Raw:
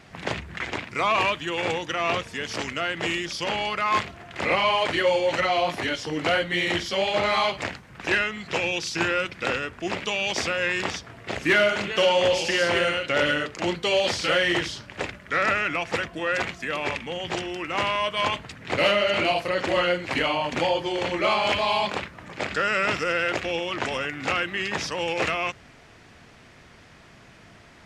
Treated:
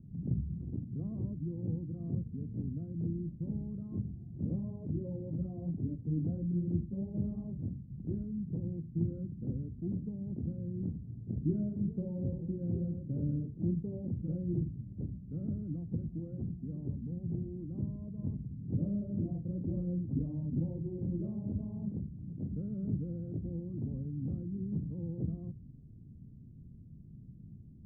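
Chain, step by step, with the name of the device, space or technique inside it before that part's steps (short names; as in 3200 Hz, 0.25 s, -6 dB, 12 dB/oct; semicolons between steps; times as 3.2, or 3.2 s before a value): the neighbour's flat through the wall (LPF 230 Hz 24 dB/oct; bell 140 Hz +4 dB 0.77 oct); gain +2 dB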